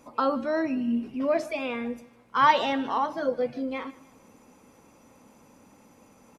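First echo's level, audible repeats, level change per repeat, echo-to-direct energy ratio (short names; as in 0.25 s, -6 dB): -20.0 dB, 2, -7.5 dB, -19.0 dB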